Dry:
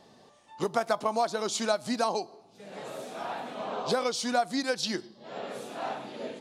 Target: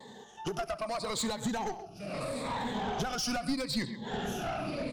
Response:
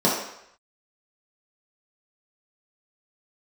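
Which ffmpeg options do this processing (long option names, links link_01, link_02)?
-filter_complex "[0:a]afftfilt=real='re*pow(10,15/40*sin(2*PI*(1*log(max(b,1)*sr/1024/100)/log(2)-(-0.59)*(pts-256)/sr)))':imag='im*pow(10,15/40*sin(2*PI*(1*log(max(b,1)*sr/1024/100)/log(2)-(-0.59)*(pts-256)/sr)))':win_size=1024:overlap=0.75,acompressor=threshold=-30dB:ratio=12,atempo=1.3,asplit=2[link_01][link_02];[link_02]adelay=130,highpass=300,lowpass=3400,asoftclip=type=hard:threshold=-30dB,volume=-13dB[link_03];[link_01][link_03]amix=inputs=2:normalize=0,asoftclip=type=tanh:threshold=-32.5dB,asubboost=boost=6:cutoff=180,asplit=2[link_04][link_05];[link_05]aecho=0:1:70:0.075[link_06];[link_04][link_06]amix=inputs=2:normalize=0,volume=4.5dB"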